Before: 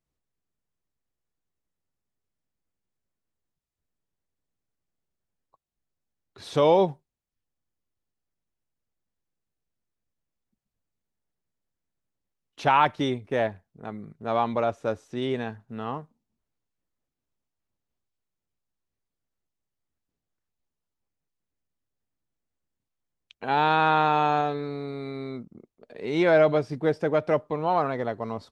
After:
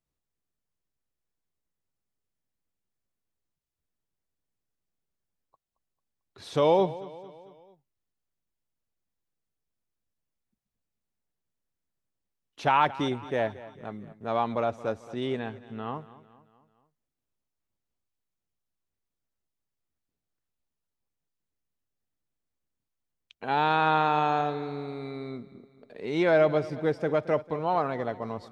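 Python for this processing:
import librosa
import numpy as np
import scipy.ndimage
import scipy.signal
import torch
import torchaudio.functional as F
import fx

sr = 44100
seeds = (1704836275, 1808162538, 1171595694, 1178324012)

y = fx.steep_lowpass(x, sr, hz=4200.0, slope=36, at=(15.39, 15.95))
y = fx.echo_feedback(y, sr, ms=223, feedback_pct=52, wet_db=-17.5)
y = y * 10.0 ** (-2.5 / 20.0)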